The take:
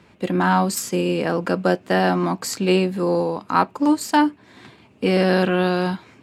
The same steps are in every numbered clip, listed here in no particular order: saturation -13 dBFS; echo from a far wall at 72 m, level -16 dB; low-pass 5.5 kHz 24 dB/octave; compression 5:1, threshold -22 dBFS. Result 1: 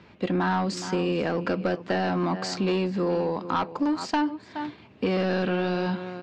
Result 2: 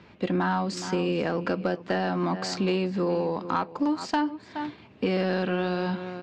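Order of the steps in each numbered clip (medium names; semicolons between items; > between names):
echo from a far wall > saturation > compression > low-pass; echo from a far wall > compression > low-pass > saturation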